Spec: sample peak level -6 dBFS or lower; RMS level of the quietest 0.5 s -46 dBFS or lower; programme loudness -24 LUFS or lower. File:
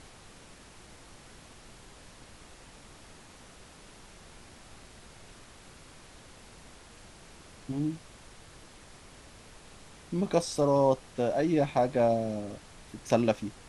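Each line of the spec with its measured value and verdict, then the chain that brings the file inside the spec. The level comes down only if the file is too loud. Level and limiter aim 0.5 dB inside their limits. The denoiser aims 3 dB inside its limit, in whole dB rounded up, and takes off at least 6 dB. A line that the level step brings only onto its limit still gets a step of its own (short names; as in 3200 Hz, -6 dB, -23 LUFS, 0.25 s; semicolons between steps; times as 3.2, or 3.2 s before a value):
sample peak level -10.5 dBFS: OK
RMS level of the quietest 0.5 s -52 dBFS: OK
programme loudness -28.5 LUFS: OK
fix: none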